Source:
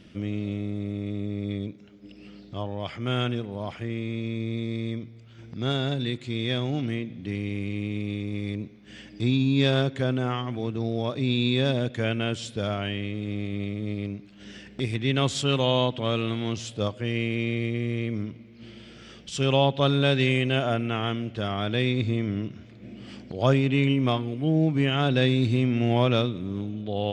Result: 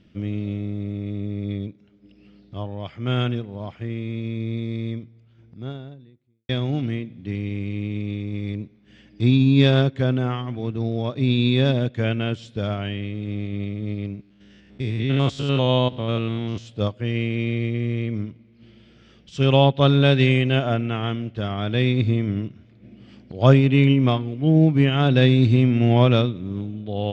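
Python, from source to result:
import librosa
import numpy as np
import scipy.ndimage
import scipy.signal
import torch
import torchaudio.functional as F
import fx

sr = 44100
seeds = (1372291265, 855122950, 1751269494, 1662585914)

y = fx.studio_fade_out(x, sr, start_s=4.85, length_s=1.64)
y = fx.spec_steps(y, sr, hold_ms=100, at=(14.16, 16.65), fade=0.02)
y = scipy.signal.sosfilt(scipy.signal.butter(2, 5500.0, 'lowpass', fs=sr, output='sos'), y)
y = fx.low_shelf(y, sr, hz=230.0, db=6.0)
y = fx.upward_expand(y, sr, threshold_db=-40.0, expansion=1.5)
y = y * 10.0 ** (5.0 / 20.0)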